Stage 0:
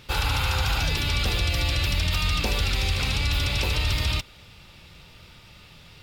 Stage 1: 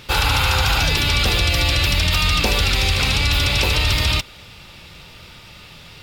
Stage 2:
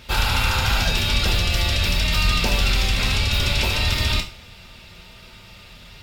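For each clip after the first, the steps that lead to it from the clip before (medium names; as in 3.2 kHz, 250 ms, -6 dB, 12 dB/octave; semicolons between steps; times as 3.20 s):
bass shelf 200 Hz -4 dB; trim +8.5 dB
octave divider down 2 oct, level -2 dB; on a send at -1 dB: reverberation, pre-delay 3 ms; on the sum: trim -5.5 dB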